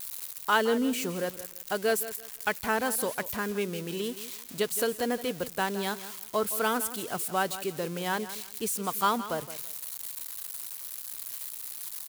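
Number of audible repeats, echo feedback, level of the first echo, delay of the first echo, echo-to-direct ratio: 2, 24%, -14.0 dB, 0.168 s, -13.5 dB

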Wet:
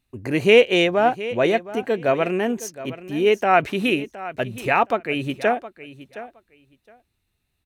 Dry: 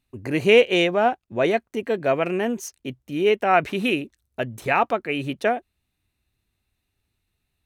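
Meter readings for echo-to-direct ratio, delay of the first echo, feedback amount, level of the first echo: -15.5 dB, 0.716 s, 16%, -15.5 dB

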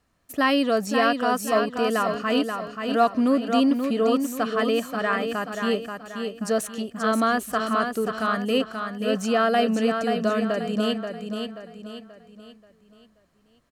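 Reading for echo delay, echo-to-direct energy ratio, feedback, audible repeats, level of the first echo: 0.532 s, -5.0 dB, 41%, 4, -6.0 dB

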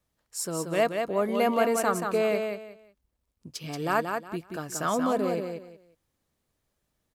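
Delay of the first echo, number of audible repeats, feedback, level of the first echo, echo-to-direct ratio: 0.181 s, 3, 24%, -5.5 dB, -5.0 dB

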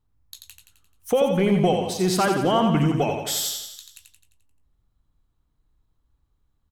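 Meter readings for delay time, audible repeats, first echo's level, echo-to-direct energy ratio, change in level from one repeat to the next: 87 ms, 6, -5.5 dB, -4.0 dB, -5.5 dB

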